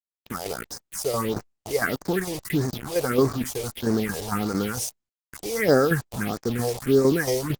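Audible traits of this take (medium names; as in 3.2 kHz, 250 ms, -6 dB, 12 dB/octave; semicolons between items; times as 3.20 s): tremolo saw down 4.4 Hz, depth 60%; a quantiser's noise floor 6-bit, dither none; phasing stages 4, 1.6 Hz, lowest notch 230–3000 Hz; Opus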